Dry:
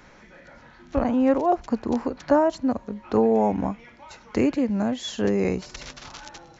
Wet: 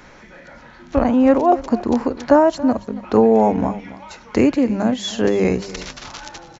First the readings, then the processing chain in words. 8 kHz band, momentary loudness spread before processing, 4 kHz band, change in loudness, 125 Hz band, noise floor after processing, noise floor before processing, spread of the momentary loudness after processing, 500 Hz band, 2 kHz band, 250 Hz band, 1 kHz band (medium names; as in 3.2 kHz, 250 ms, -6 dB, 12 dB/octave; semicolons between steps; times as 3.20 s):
no reading, 18 LU, +6.5 dB, +6.5 dB, +5.0 dB, -44 dBFS, -51 dBFS, 17 LU, +6.5 dB, +6.5 dB, +6.0 dB, +6.5 dB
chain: hum notches 50/100/150/200 Hz; on a send: delay 279 ms -17 dB; on the sum: trim +6.5 dB